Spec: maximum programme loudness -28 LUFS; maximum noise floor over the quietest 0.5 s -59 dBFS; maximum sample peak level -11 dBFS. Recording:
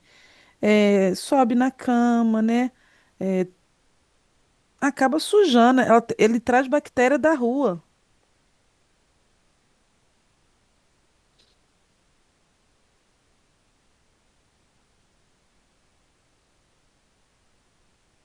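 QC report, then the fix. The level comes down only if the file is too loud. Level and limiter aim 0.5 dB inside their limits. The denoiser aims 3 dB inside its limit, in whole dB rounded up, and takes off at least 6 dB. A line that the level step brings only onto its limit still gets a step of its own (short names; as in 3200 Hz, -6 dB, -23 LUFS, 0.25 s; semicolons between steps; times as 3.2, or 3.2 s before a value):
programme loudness -20.5 LUFS: fail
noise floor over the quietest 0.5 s -65 dBFS: OK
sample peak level -5.0 dBFS: fail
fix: gain -8 dB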